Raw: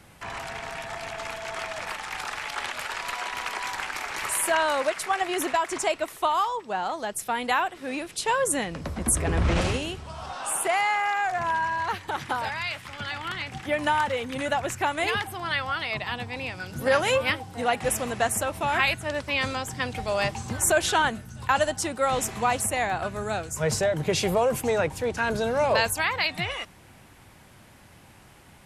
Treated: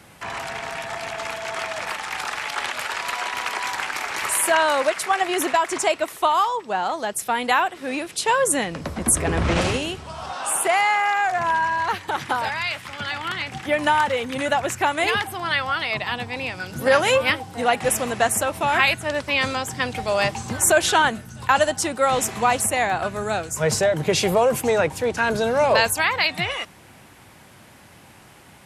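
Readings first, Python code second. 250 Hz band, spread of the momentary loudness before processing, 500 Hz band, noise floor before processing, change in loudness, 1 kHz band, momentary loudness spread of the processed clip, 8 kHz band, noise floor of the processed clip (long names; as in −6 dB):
+4.0 dB, 10 LU, +5.0 dB, −52 dBFS, +5.0 dB, +5.0 dB, 10 LU, +5.0 dB, −48 dBFS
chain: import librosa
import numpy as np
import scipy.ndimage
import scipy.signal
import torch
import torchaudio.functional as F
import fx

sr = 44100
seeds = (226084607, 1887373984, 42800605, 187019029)

y = fx.highpass(x, sr, hz=120.0, slope=6)
y = y * 10.0 ** (5.0 / 20.0)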